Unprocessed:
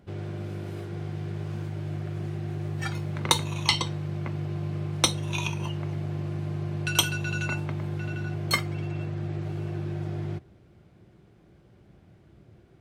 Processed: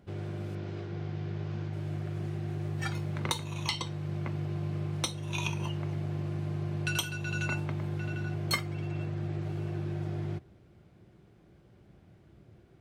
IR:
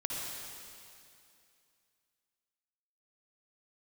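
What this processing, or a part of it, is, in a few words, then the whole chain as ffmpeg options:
limiter into clipper: -filter_complex "[0:a]alimiter=limit=-12dB:level=0:latency=1:release=431,asoftclip=type=hard:threshold=-14dB,asettb=1/sr,asplit=3[link_01][link_02][link_03];[link_01]atrim=end=0.554[link_04];[link_02]atrim=start=0.55:end=1.73,asetpts=PTS-STARTPTS,afade=type=in:duration=0.004:curve=qsin,afade=type=out:start_time=1.176:duration=0.004:curve=qsin,lowpass=frequency=6000:width=0.5412,lowpass=frequency=6000:width=1.3066[link_05];[link_03]atrim=start=1.726[link_06];[link_04][link_05]acrossfade=duration=0.004:curve1=hsin:curve2=qsin[link_07];[link_07][link_06]acrossfade=duration=0.004:curve1=qsin:curve2=hsin,volume=-2.5dB"

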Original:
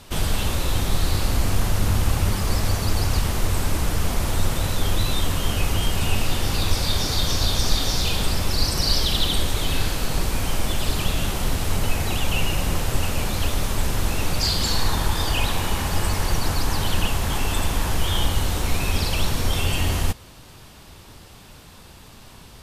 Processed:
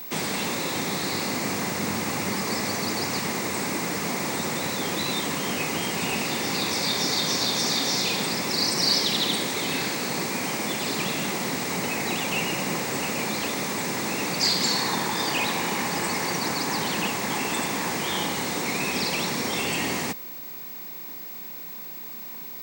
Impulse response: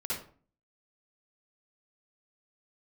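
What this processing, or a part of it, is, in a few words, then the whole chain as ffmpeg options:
old television with a line whistle: -af "highpass=frequency=180:width=0.5412,highpass=frequency=180:width=1.3066,equalizer=frequency=630:width_type=q:width=4:gain=-4,equalizer=frequency=1400:width_type=q:width=4:gain=-5,equalizer=frequency=2100:width_type=q:width=4:gain=6,equalizer=frequency=3100:width_type=q:width=4:gain=-8,lowpass=frequency=8900:width=0.5412,lowpass=frequency=8900:width=1.3066,aeval=exprs='val(0)+0.0141*sin(2*PI*15734*n/s)':channel_layout=same,volume=2dB"

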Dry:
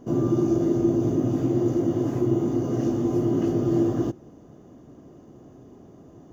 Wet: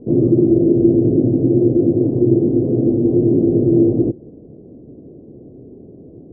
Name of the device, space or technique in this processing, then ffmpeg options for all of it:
under water: -af "lowpass=frequency=510:width=0.5412,lowpass=frequency=510:width=1.3066,equalizer=frequency=470:width_type=o:width=0.56:gain=5,volume=8dB"

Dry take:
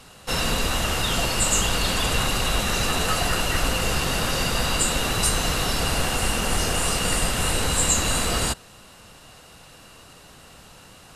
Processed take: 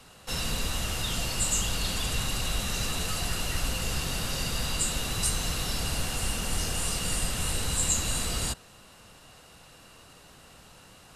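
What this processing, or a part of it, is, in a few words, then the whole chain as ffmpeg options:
one-band saturation: -filter_complex "[0:a]acrossover=split=210|3000[link_01][link_02][link_03];[link_02]asoftclip=type=tanh:threshold=-32dB[link_04];[link_01][link_04][link_03]amix=inputs=3:normalize=0,volume=-5dB"

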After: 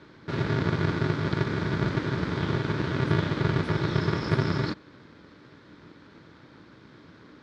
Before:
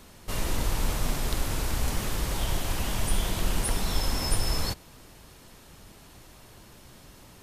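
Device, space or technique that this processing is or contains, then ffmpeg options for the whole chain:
ring modulator pedal into a guitar cabinet: -af "aeval=exprs='val(0)*sgn(sin(2*PI*130*n/s))':channel_layout=same,highpass=94,equalizer=frequency=300:width_type=q:width=4:gain=8,equalizer=frequency=730:width_type=q:width=4:gain=-10,equalizer=frequency=1500:width_type=q:width=4:gain=5,equalizer=frequency=2800:width_type=q:width=4:gain=-9,lowpass=frequency=4000:width=0.5412,lowpass=frequency=4000:width=1.3066"

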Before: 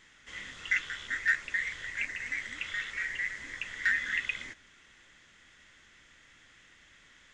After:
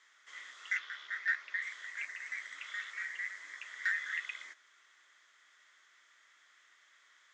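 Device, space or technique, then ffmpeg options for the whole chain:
phone speaker on a table: -filter_complex "[0:a]asettb=1/sr,asplit=3[link_01][link_02][link_03];[link_01]atrim=end=0.774[link_04];[link_02]atrim=start=0.77:end=1.62,asetpts=PTS-STARTPTS,afade=type=in:duration=0.004:curve=qsin,afade=type=out:start_time=0.846:duration=0.004:curve=qsin,lowpass=frequency=5400:width=0.5412,lowpass=frequency=5400:width=1.3066[link_05];[link_03]atrim=start=1.616[link_06];[link_04][link_05]acrossfade=duration=0.004:curve1=hsin:curve2=qsin[link_07];[link_07][link_06]acrossfade=duration=0.004:curve1=qsin:curve2=hsin,highpass=frequency=470:width=0.5412,highpass=frequency=470:width=1.3066,equalizer=frequency=500:width_type=q:width=4:gain=-10,equalizer=frequency=800:width_type=q:width=4:gain=-4,equalizer=frequency=1200:width_type=q:width=4:gain=5,equalizer=frequency=2700:width_type=q:width=4:gain=-7,lowpass=frequency=8500:width=0.5412,lowpass=frequency=8500:width=1.3066,volume=-5dB"

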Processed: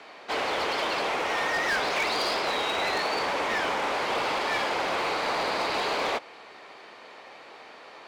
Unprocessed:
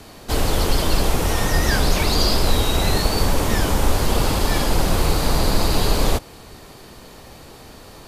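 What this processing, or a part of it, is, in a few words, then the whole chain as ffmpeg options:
megaphone: -af "highpass=580,lowpass=3000,equalizer=frequency=2200:width_type=o:width=0.38:gain=5,asoftclip=type=hard:threshold=-22.5dB"

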